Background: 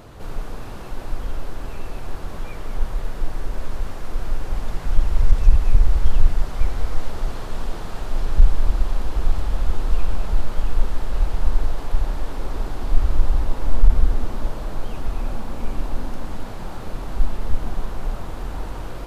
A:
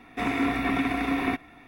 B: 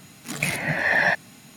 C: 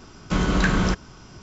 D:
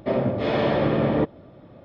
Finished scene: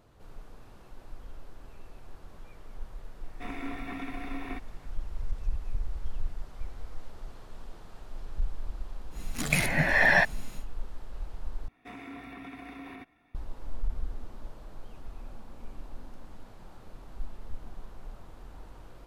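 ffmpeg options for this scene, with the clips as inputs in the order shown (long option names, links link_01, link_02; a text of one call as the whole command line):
ffmpeg -i bed.wav -i cue0.wav -i cue1.wav -filter_complex "[1:a]asplit=2[link_01][link_02];[0:a]volume=-18dB[link_03];[2:a]lowshelf=frequency=82:gain=10.5[link_04];[link_02]alimiter=limit=-19dB:level=0:latency=1:release=75[link_05];[link_03]asplit=2[link_06][link_07];[link_06]atrim=end=11.684[link_08];[link_05]atrim=end=1.67,asetpts=PTS-STARTPTS,volume=-16dB[link_09];[link_07]atrim=start=13.346[link_10];[link_01]atrim=end=1.67,asetpts=PTS-STARTPTS,volume=-13dB,afade=type=in:duration=0.004:curve=hsin,afade=type=out:start_time=1.666:duration=0.004:curve=hsin,adelay=3230[link_11];[link_04]atrim=end=1.56,asetpts=PTS-STARTPTS,volume=-1.5dB,afade=type=in:duration=0.1,afade=type=out:start_time=1.46:duration=0.1,adelay=9100[link_12];[link_08][link_09]acrossfade=duration=0.004:curve1=hsin:curve2=hsin[link_13];[link_13][link_10]acrossfade=duration=0.004:curve1=hsin:curve2=hsin[link_14];[link_14][link_11][link_12]amix=inputs=3:normalize=0" out.wav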